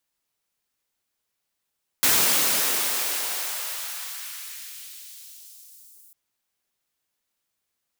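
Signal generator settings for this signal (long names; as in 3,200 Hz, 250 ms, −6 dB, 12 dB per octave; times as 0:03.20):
filter sweep on noise white, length 4.10 s highpass, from 120 Hz, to 10,000 Hz, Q 0.82, exponential, gain ramp −32.5 dB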